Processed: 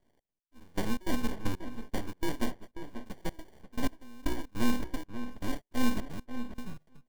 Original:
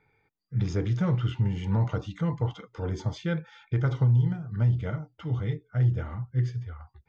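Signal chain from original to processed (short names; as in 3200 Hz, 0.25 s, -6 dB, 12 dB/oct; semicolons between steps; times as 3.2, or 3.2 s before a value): LPF 2000 Hz 12 dB/oct; notch 500 Hz, Q 12; sample-rate reducer 1300 Hz, jitter 0%; full-wave rectifier; step gate "xx.x....xx.x" 155 bpm -24 dB; outdoor echo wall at 92 m, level -10 dB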